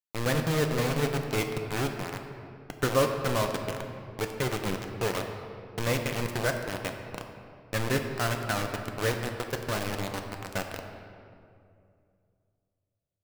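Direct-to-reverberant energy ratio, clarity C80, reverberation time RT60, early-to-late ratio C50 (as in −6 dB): 3.5 dB, 6.5 dB, 2.4 s, 5.5 dB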